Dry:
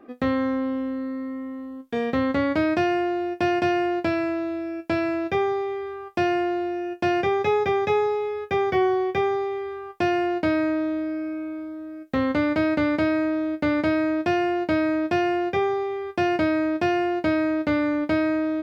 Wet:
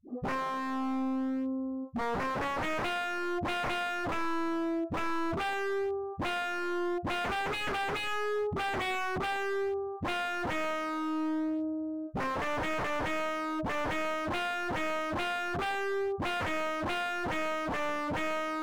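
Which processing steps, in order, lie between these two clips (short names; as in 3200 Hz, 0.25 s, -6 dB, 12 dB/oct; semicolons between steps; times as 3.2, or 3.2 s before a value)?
inverse Chebyshev low-pass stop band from 1900 Hz, stop band 40 dB; dispersion highs, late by 95 ms, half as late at 370 Hz; wavefolder -27.5 dBFS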